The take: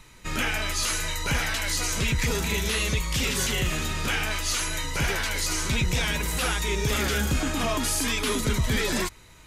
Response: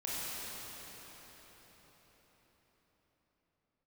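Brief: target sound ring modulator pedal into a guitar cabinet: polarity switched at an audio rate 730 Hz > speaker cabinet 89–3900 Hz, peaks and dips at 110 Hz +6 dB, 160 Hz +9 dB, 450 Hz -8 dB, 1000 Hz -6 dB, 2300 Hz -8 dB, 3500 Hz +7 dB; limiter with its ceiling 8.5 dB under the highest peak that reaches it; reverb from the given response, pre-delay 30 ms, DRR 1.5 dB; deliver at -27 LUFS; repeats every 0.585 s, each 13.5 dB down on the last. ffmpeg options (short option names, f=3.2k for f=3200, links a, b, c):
-filter_complex "[0:a]alimiter=limit=-23.5dB:level=0:latency=1,aecho=1:1:585|1170:0.211|0.0444,asplit=2[a][b];[1:a]atrim=start_sample=2205,adelay=30[c];[b][c]afir=irnorm=-1:irlink=0,volume=-6.5dB[d];[a][d]amix=inputs=2:normalize=0,aeval=exprs='val(0)*sgn(sin(2*PI*730*n/s))':c=same,highpass=89,equalizer=f=110:t=q:w=4:g=6,equalizer=f=160:t=q:w=4:g=9,equalizer=f=450:t=q:w=4:g=-8,equalizer=f=1k:t=q:w=4:g=-6,equalizer=f=2.3k:t=q:w=4:g=-8,equalizer=f=3.5k:t=q:w=4:g=7,lowpass=f=3.9k:w=0.5412,lowpass=f=3.9k:w=1.3066,volume=3dB"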